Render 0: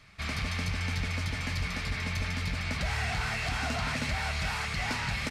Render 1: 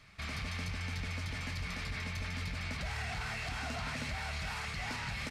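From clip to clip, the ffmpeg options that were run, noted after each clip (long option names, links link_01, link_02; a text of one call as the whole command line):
ffmpeg -i in.wav -af "alimiter=level_in=4dB:limit=-24dB:level=0:latency=1,volume=-4dB,volume=-2.5dB" out.wav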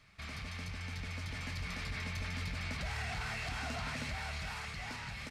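ffmpeg -i in.wav -af "dynaudnorm=framelen=530:gausssize=5:maxgain=4dB,volume=-4.5dB" out.wav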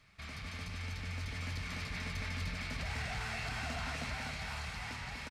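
ffmpeg -i in.wav -af "aecho=1:1:246:0.668,volume=-1.5dB" out.wav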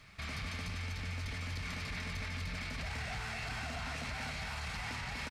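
ffmpeg -i in.wav -af "alimiter=level_in=15.5dB:limit=-24dB:level=0:latency=1,volume=-15.5dB,volume=7.5dB" out.wav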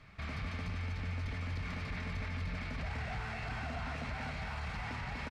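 ffmpeg -i in.wav -af "lowpass=frequency=1500:poles=1,volume=2.5dB" out.wav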